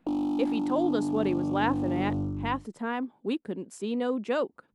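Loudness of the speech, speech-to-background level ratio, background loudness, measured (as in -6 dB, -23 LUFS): -31.5 LUFS, -1.5 dB, -30.0 LUFS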